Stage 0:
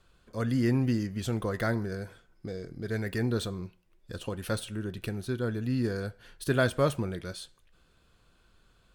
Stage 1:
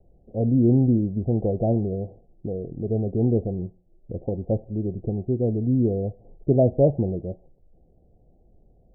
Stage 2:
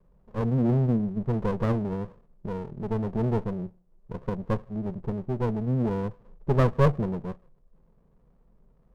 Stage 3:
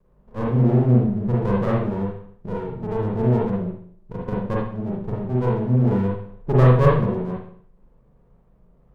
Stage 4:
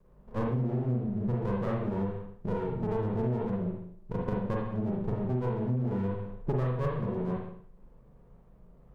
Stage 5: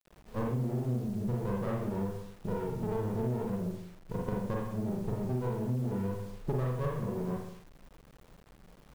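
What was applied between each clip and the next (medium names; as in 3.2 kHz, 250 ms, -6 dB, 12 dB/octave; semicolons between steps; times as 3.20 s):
steep low-pass 790 Hz 96 dB/octave; trim +8 dB
static phaser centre 310 Hz, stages 6; sliding maximum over 33 samples
reverberation RT60 0.55 s, pre-delay 40 ms, DRR -4.5 dB
compression 8:1, threshold -27 dBFS, peak gain reduction 18 dB
bit crusher 9-bit; trim -2.5 dB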